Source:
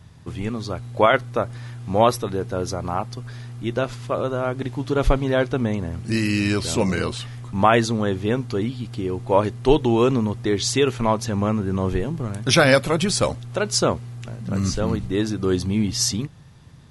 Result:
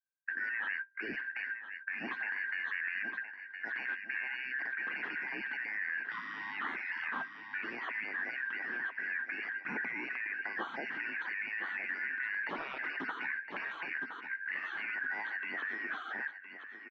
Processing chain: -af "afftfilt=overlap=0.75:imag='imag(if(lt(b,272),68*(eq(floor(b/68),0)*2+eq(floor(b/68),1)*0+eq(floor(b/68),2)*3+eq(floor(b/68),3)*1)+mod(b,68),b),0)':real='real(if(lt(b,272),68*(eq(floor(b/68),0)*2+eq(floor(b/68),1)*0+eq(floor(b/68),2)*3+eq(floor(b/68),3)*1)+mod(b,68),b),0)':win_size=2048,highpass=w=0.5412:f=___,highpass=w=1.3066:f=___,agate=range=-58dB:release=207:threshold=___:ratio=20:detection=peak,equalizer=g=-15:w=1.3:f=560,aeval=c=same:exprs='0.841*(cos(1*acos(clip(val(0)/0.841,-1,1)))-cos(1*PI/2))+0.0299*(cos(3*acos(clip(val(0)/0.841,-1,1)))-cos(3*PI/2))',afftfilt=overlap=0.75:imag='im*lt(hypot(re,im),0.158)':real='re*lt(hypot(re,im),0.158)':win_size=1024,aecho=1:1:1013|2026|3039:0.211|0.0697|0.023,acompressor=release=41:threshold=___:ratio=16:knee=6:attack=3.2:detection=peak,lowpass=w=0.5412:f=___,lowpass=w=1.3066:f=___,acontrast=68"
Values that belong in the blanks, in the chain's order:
240, 240, -31dB, -35dB, 1900, 1900